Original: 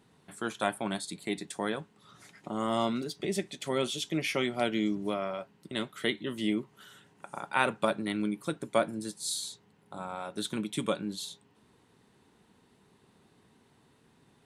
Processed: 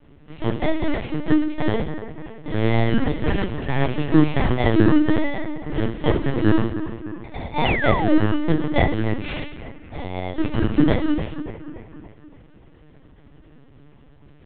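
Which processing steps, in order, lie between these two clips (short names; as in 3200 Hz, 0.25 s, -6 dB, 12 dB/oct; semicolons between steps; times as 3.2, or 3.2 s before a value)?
FFT order left unsorted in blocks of 32 samples; on a send: split-band echo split 2400 Hz, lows 0.287 s, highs 96 ms, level -11 dB; on the sum: FDN reverb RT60 0.37 s, low-frequency decay 1.5×, high-frequency decay 0.8×, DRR -8.5 dB; LPC vocoder at 8 kHz pitch kept; painted sound fall, 7.65–8.15, 510–3100 Hz -30 dBFS; gain +4.5 dB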